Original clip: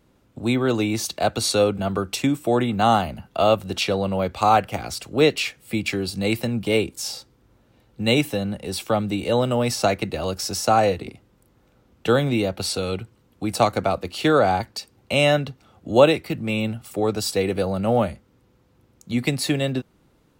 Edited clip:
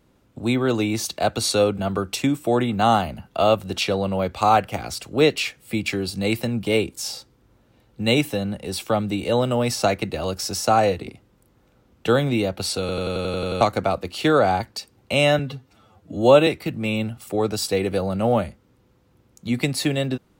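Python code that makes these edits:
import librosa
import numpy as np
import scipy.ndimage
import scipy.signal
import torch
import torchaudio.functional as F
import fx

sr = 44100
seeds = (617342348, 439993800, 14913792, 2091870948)

y = fx.edit(x, sr, fx.stutter_over(start_s=12.8, slice_s=0.09, count=9),
    fx.stretch_span(start_s=15.39, length_s=0.72, factor=1.5), tone=tone)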